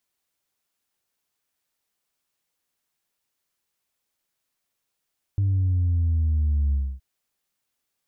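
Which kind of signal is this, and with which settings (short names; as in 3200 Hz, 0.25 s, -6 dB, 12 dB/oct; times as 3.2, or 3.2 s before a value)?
sub drop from 100 Hz, over 1.62 s, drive 0.5 dB, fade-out 0.27 s, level -19 dB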